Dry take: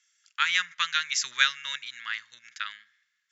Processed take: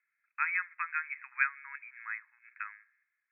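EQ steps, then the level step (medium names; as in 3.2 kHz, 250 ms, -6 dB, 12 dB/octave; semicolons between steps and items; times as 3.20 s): brick-wall FIR high-pass 720 Hz; brick-wall FIR low-pass 2.6 kHz; -5.0 dB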